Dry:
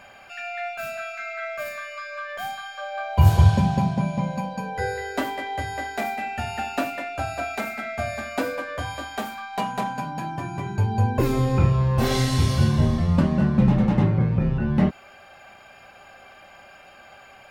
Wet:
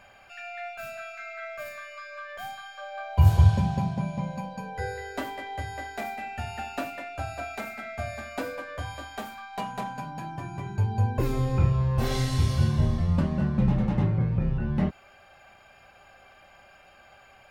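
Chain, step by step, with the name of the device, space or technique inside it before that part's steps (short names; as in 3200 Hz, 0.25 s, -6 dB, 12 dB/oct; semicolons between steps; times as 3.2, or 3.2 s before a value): low shelf boost with a cut just above (low shelf 98 Hz +8 dB; bell 240 Hz -2.5 dB 0.83 oct); gain -6.5 dB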